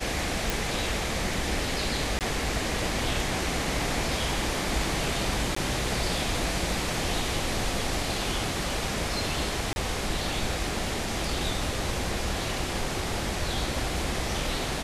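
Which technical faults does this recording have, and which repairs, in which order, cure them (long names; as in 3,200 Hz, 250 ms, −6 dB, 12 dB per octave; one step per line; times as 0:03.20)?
0:00.50: click
0:02.19–0:02.21: drop-out 18 ms
0:05.55–0:05.56: drop-out 14 ms
0:09.73–0:09.76: drop-out 31 ms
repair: click removal
repair the gap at 0:02.19, 18 ms
repair the gap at 0:05.55, 14 ms
repair the gap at 0:09.73, 31 ms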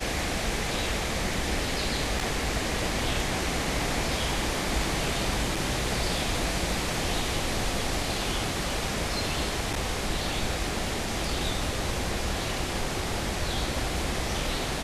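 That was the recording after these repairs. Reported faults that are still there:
none of them is left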